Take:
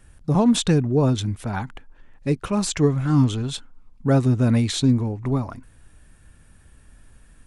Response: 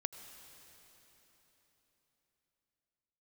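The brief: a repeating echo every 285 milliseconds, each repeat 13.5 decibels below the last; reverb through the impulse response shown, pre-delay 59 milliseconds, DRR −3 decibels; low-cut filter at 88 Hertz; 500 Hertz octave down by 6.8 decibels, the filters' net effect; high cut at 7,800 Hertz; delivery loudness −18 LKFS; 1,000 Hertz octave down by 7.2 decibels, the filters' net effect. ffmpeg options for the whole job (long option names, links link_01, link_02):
-filter_complex "[0:a]highpass=88,lowpass=7800,equalizer=frequency=500:width_type=o:gain=-7,equalizer=frequency=1000:width_type=o:gain=-7,aecho=1:1:285|570:0.211|0.0444,asplit=2[link_01][link_02];[1:a]atrim=start_sample=2205,adelay=59[link_03];[link_02][link_03]afir=irnorm=-1:irlink=0,volume=3.5dB[link_04];[link_01][link_04]amix=inputs=2:normalize=0,volume=0.5dB"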